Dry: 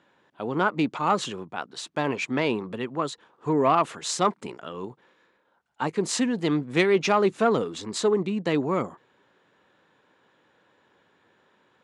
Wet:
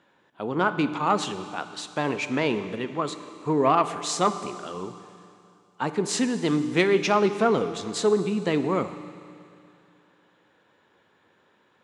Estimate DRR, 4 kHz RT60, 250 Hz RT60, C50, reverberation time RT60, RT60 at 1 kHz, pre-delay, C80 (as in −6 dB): 10.0 dB, 2.6 s, 2.6 s, 11.0 dB, 2.6 s, 2.6 s, 7 ms, 12.0 dB